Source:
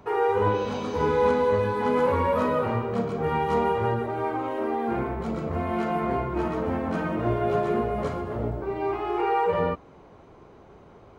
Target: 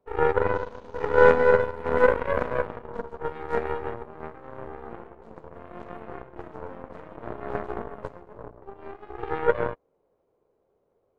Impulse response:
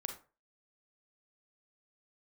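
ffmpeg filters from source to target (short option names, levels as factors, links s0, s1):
-af "equalizer=f=500:w=1.5:g=14.5,aeval=exprs='0.944*(cos(1*acos(clip(val(0)/0.944,-1,1)))-cos(1*PI/2))+0.299*(cos(3*acos(clip(val(0)/0.944,-1,1)))-cos(3*PI/2))+0.075*(cos(4*acos(clip(val(0)/0.944,-1,1)))-cos(4*PI/2))+0.0075*(cos(6*acos(clip(val(0)/0.944,-1,1)))-cos(6*PI/2))':c=same,volume=0.708"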